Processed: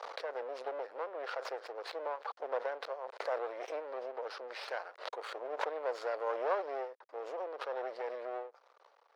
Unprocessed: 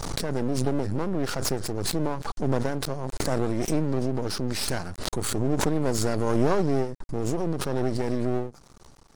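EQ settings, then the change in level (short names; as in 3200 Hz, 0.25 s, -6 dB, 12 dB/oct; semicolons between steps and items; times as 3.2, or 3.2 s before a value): elliptic high-pass 500 Hz, stop band 70 dB; air absorption 330 m; -3.5 dB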